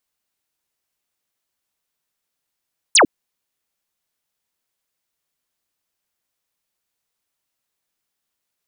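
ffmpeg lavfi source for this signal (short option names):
-f lavfi -i "aevalsrc='0.398*clip(t/0.002,0,1)*clip((0.1-t)/0.002,0,1)*sin(2*PI*10000*0.1/log(230/10000)*(exp(log(230/10000)*t/0.1)-1))':d=0.1:s=44100"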